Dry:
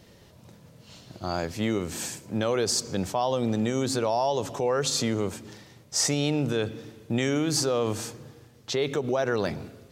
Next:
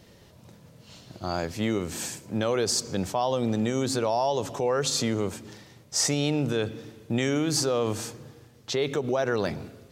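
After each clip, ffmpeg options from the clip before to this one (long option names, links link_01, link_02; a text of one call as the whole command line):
ffmpeg -i in.wav -af anull out.wav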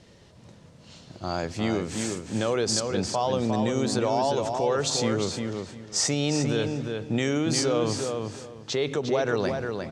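ffmpeg -i in.wav -filter_complex "[0:a]lowpass=frequency=9100:width=0.5412,lowpass=frequency=9100:width=1.3066,asplit=2[link_01][link_02];[link_02]adelay=354,lowpass=frequency=4900:poles=1,volume=-5dB,asplit=2[link_03][link_04];[link_04]adelay=354,lowpass=frequency=4900:poles=1,volume=0.21,asplit=2[link_05][link_06];[link_06]adelay=354,lowpass=frequency=4900:poles=1,volume=0.21[link_07];[link_03][link_05][link_07]amix=inputs=3:normalize=0[link_08];[link_01][link_08]amix=inputs=2:normalize=0" out.wav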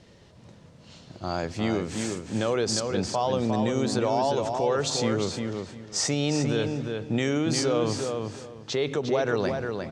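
ffmpeg -i in.wav -af "highshelf=frequency=7400:gain=-5.5" out.wav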